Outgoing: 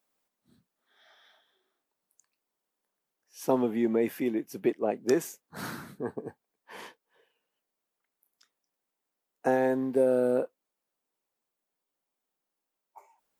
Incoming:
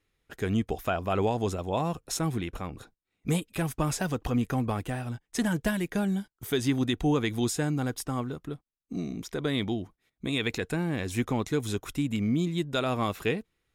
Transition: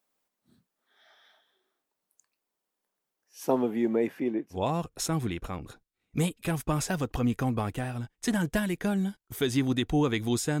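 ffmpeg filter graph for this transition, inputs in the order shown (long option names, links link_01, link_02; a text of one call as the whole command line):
ffmpeg -i cue0.wav -i cue1.wav -filter_complex "[0:a]asettb=1/sr,asplit=3[link_01][link_02][link_03];[link_01]atrim=end=4.074[link_04];[link_02]atrim=start=4.07:end=4.58,asetpts=PTS-STARTPTS,afade=type=in:duration=0.004:curve=qsin,afade=type=out:start_time=0.506:duration=0.004:curve=qsin,aemphasis=mode=reproduction:type=75kf[link_05];[link_03]atrim=start=4.576[link_06];[link_04][link_05]acrossfade=duration=0.004:curve1=hsin:curve2=qsin[link_07];[link_07][link_06]acrossfade=duration=0.004:curve1=qsin:curve2=hsin,apad=whole_dur=10.6,atrim=end=10.6,atrim=end=4.58,asetpts=PTS-STARTPTS[link_08];[1:a]atrim=start=1.61:end=7.71,asetpts=PTS-STARTPTS[link_09];[link_08][link_09]acrossfade=duration=0.08:curve1=tri:curve2=tri" out.wav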